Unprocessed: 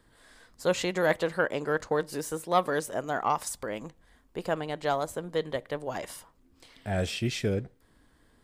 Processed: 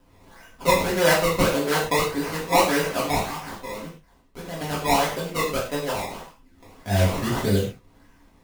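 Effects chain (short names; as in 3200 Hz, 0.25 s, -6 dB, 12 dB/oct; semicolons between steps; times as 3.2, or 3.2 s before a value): 3.18–4.61 tube stage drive 37 dB, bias 0.7; decimation with a swept rate 20×, swing 100% 1.7 Hz; non-linear reverb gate 0.15 s falling, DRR -7 dB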